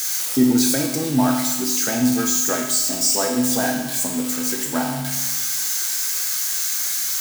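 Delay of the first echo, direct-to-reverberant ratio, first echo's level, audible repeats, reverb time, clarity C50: none, 0.5 dB, none, none, 1.1 s, 4.5 dB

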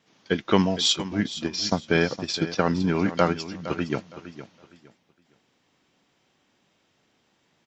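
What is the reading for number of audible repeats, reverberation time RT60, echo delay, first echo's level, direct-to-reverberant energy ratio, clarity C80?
2, none, 0.463 s, -13.5 dB, none, none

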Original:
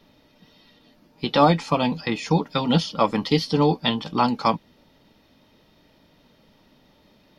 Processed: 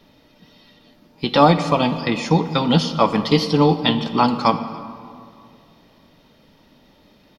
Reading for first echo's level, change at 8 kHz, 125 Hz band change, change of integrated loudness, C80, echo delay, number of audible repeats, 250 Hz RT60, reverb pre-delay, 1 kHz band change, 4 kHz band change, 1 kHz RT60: -23.0 dB, +3.5 dB, +4.0 dB, +4.0 dB, 12.0 dB, 0.284 s, 1, 2.6 s, 32 ms, +4.0 dB, +3.5 dB, 2.3 s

